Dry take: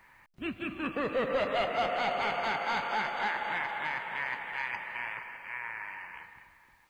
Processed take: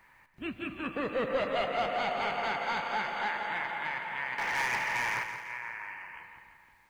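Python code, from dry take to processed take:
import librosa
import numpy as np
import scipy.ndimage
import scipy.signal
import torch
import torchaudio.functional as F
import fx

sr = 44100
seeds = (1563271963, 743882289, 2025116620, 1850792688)

y = fx.leveller(x, sr, passes=3, at=(4.38, 5.24))
y = fx.echo_feedback(y, sr, ms=170, feedback_pct=50, wet_db=-9.5)
y = y * 10.0 ** (-1.5 / 20.0)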